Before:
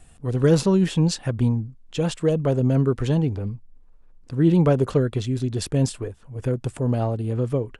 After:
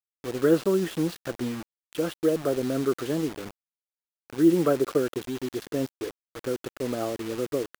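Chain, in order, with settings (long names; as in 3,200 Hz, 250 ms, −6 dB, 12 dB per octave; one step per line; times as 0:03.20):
loudspeaker in its box 320–3,300 Hz, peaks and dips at 330 Hz +7 dB, 910 Hz −10 dB, 1,300 Hz +6 dB, 2,400 Hz −9 dB
bit-depth reduction 6 bits, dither none
level −2 dB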